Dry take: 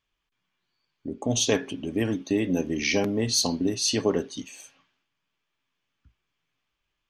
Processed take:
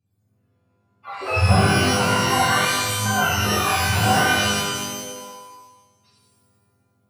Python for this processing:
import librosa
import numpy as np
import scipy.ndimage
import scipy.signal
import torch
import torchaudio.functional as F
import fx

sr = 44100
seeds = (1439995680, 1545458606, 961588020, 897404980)

y = fx.octave_mirror(x, sr, pivot_hz=560.0)
y = fx.octave_resonator(y, sr, note='A', decay_s=0.63, at=(2.58, 3.06))
y = fx.rev_shimmer(y, sr, seeds[0], rt60_s=1.3, semitones=12, shimmer_db=-2, drr_db=-6.5)